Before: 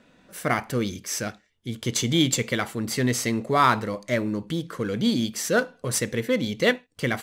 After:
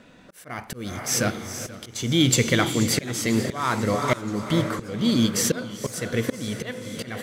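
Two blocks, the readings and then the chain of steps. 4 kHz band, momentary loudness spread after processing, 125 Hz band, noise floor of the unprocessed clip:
+1.5 dB, 14 LU, +2.5 dB, -63 dBFS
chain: bell 97 Hz +4 dB 0.52 oct; in parallel at 0 dB: limiter -17.5 dBFS, peak gain reduction 10.5 dB; on the sum: diffused feedback echo 0.46 s, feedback 41%, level -10 dB; auto swell 0.441 s; warbling echo 0.488 s, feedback 67%, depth 157 cents, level -18.5 dB

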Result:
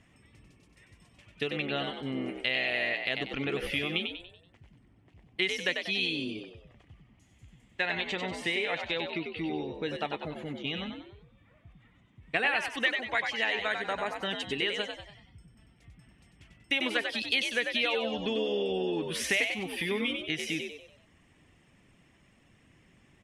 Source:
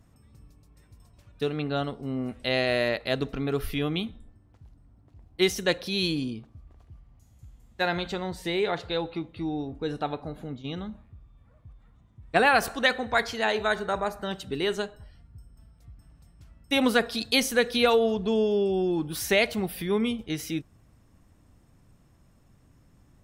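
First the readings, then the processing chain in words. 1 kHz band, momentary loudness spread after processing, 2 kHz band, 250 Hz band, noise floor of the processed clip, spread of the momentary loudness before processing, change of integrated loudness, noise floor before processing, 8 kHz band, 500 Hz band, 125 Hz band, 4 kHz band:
-7.5 dB, 9 LU, -0.5 dB, -7.0 dB, -63 dBFS, 12 LU, -3.5 dB, -60 dBFS, -5.5 dB, -7.5 dB, -8.0 dB, -1.0 dB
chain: LPF 10000 Hz 24 dB/oct; band shelf 2400 Hz +11.5 dB 1.1 oct; reverb removal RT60 0.52 s; low shelf 93 Hz -10.5 dB; compressor 3:1, threshold -30 dBFS, peak gain reduction 15.5 dB; frequency-shifting echo 95 ms, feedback 41%, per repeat +66 Hz, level -5.5 dB

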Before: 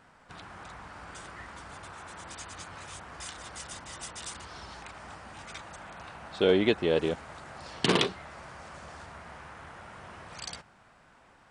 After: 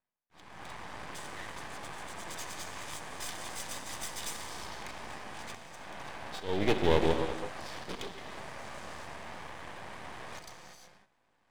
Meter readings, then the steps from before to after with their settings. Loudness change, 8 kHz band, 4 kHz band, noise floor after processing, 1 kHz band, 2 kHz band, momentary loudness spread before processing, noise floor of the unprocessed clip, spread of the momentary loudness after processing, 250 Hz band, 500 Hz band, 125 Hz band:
-5.0 dB, +0.5 dB, -5.5 dB, -73 dBFS, +0.5 dB, -2.5 dB, 20 LU, -59 dBFS, 15 LU, -4.5 dB, -4.0 dB, -1.0 dB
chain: notch comb 1400 Hz; in parallel at -6 dB: soft clip -27.5 dBFS, distortion -6 dB; on the sum: gate -48 dBFS, range -52 dB; auto swell 0.397 s; non-linear reverb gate 0.38 s flat, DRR 5.5 dB; reverse; upward compressor, threshold -45 dBFS; reverse; half-wave rectifier; gain +3 dB

